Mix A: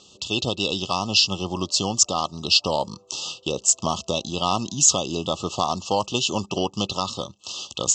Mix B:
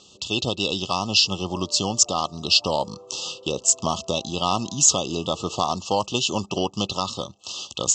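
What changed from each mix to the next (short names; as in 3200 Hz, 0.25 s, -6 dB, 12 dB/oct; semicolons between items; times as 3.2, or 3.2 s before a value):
background +11.5 dB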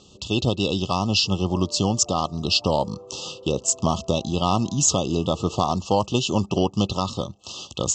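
speech: add high shelf 5600 Hz +5.5 dB; master: add tilt -2.5 dB/oct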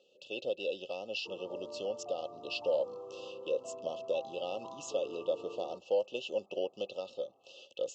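speech: add vowel filter e; master: add HPF 410 Hz 6 dB/oct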